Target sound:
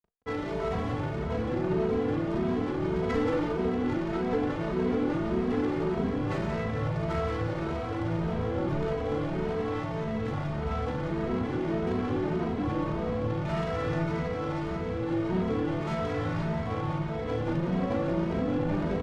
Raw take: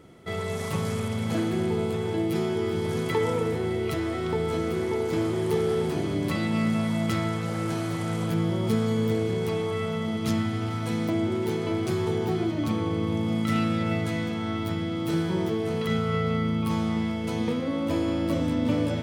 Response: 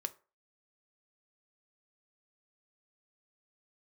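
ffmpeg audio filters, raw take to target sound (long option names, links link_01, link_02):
-filter_complex "[0:a]lowshelf=frequency=180:gain=-10,asoftclip=type=tanh:threshold=-31dB,asplit=3[link_01][link_02][link_03];[link_02]asetrate=22050,aresample=44100,atempo=2,volume=-8dB[link_04];[link_03]asetrate=29433,aresample=44100,atempo=1.49831,volume=-2dB[link_05];[link_01][link_04][link_05]amix=inputs=3:normalize=0,acrusher=bits=6:mix=0:aa=0.000001,adynamicsmooth=sensitivity=3:basefreq=690,aecho=1:1:37.9|174.9:0.355|0.562,asplit=2[link_06][link_07];[1:a]atrim=start_sample=2205,asetrate=57330,aresample=44100[link_08];[link_07][link_08]afir=irnorm=-1:irlink=0,volume=3dB[link_09];[link_06][link_09]amix=inputs=2:normalize=0,asplit=2[link_10][link_11];[link_11]adelay=2.8,afreqshift=1.7[link_12];[link_10][link_12]amix=inputs=2:normalize=1"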